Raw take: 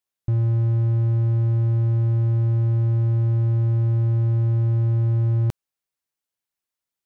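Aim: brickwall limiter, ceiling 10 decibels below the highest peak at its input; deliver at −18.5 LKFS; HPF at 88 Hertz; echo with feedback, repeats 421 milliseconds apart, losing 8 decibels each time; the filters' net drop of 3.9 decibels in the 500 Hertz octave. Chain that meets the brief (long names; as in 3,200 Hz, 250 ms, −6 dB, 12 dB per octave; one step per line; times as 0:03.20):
high-pass filter 88 Hz
parametric band 500 Hz −7 dB
brickwall limiter −28 dBFS
repeating echo 421 ms, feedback 40%, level −8 dB
level +16 dB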